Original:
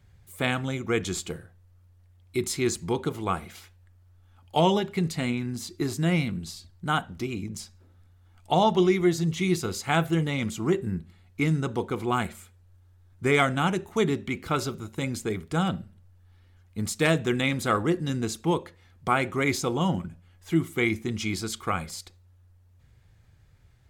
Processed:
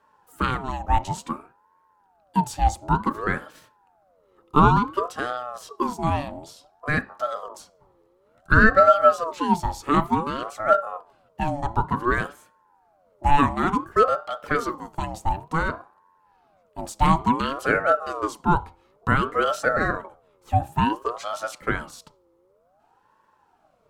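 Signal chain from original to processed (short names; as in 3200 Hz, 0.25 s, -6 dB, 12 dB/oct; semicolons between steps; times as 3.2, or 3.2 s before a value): band shelf 550 Hz +14 dB; ring modulator with a swept carrier 710 Hz, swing 40%, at 0.56 Hz; gain -3 dB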